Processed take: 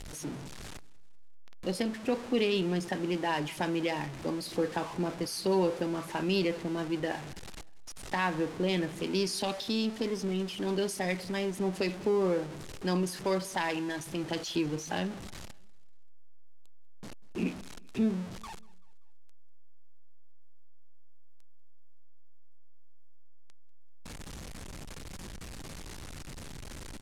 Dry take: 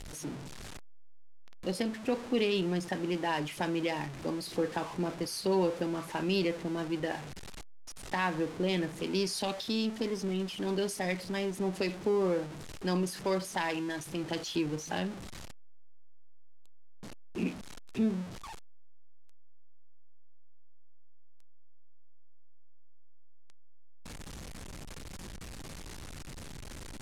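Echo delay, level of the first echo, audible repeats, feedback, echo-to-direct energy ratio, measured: 193 ms, -23.0 dB, 2, 46%, -22.0 dB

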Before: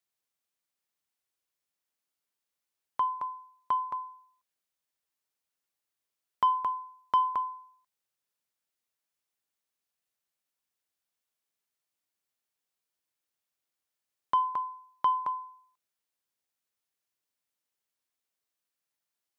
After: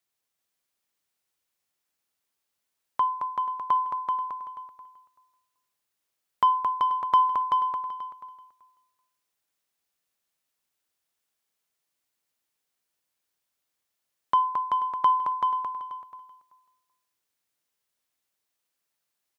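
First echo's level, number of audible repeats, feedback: -4.0 dB, 6, no regular repeats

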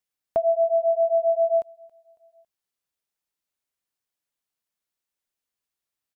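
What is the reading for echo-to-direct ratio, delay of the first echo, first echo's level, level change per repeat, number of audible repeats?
-23.0 dB, 276 ms, -24.0 dB, -6.0 dB, 2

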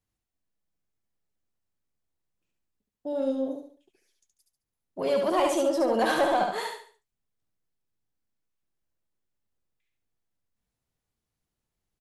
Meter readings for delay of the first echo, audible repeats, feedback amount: 71 ms, 4, 34%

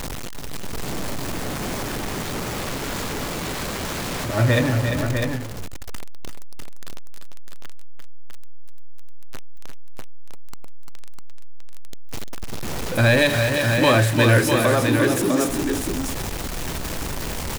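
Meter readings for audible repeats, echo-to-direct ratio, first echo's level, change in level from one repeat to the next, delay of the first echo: 2, -3.0 dB, -7.0 dB, no regular repeats, 346 ms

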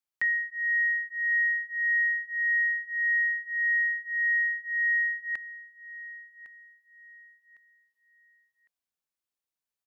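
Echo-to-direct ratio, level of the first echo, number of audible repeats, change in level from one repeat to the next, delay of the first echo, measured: -16.0 dB, -16.5 dB, 2, -11.0 dB, 1106 ms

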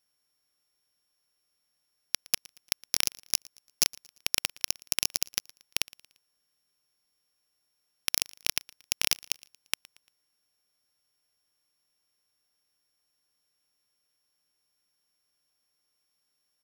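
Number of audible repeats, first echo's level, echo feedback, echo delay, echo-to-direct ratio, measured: 2, -23.5 dB, 42%, 115 ms, -22.5 dB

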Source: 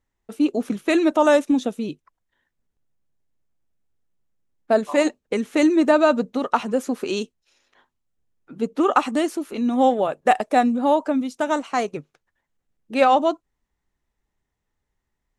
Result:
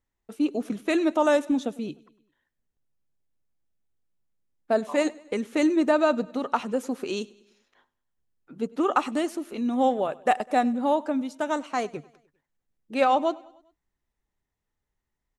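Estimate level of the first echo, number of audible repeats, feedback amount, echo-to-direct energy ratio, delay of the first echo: -23.0 dB, 3, 54%, -21.5 dB, 100 ms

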